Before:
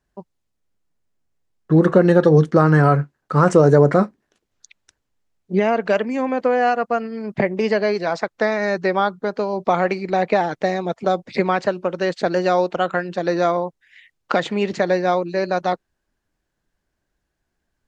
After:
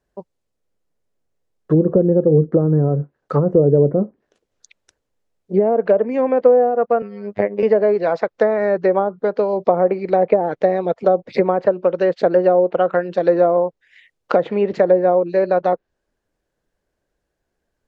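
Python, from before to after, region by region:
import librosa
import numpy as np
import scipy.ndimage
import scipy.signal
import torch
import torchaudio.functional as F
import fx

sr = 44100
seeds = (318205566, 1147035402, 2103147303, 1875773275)

y = fx.chain(x, sr, fx.bass_treble(bass_db=-2, treble_db=-7),
    fx.robotise(hz=102.0), at=(7.02, 7.63))
y = fx.env_lowpass_down(y, sr, base_hz=330.0, full_db=-11.0)
y = fx.peak_eq(y, sr, hz=500.0, db=9.5, octaves=0.86)
y = y * librosa.db_to_amplitude(-1.5)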